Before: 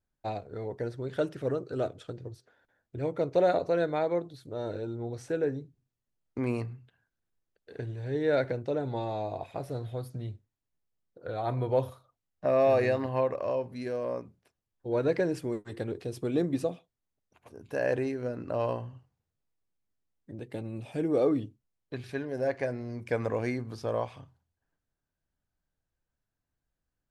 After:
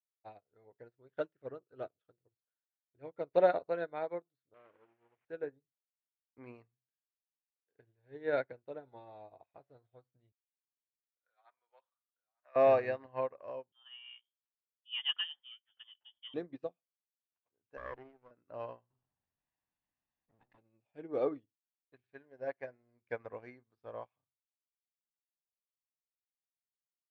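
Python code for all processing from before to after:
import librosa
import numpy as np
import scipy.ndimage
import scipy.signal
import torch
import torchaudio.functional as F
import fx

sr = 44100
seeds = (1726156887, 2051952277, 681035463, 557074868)

y = fx.chain(x, sr, fx.delta_mod(bps=16000, step_db=-39.0),
    fx.highpass(hz=150.0, slope=12),
    fx.transformer_sat(knee_hz=840.0), at=(4.54, 5.25))
y = fx.chain(y, sr, fx.cheby1_highpass(hz=1400.0, order=2),
    fx.echo_single(ms=900, db=-14.0), at=(10.32, 12.56))
y = fx.chain(y, sr, fx.peak_eq(hz=95.0, db=-5.0, octaves=0.87),
    fx.freq_invert(carrier_hz=3400), at=(13.72, 16.34))
y = fx.chain(y, sr, fx.lower_of_two(delay_ms=0.55),
    fx.lowpass(hz=2500.0, slope=12),
    fx.backlash(play_db=-40.0), at=(17.77, 18.31))
y = fx.chain(y, sr, fx.lower_of_two(delay_ms=1.1),
    fx.peak_eq(hz=290.0, db=4.0, octaves=1.1),
    fx.env_flatten(amount_pct=70), at=(18.9, 20.58))
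y = scipy.signal.sosfilt(scipy.signal.butter(2, 2500.0, 'lowpass', fs=sr, output='sos'), y)
y = fx.low_shelf(y, sr, hz=400.0, db=-11.0)
y = fx.upward_expand(y, sr, threshold_db=-50.0, expansion=2.5)
y = F.gain(torch.from_numpy(y), 4.0).numpy()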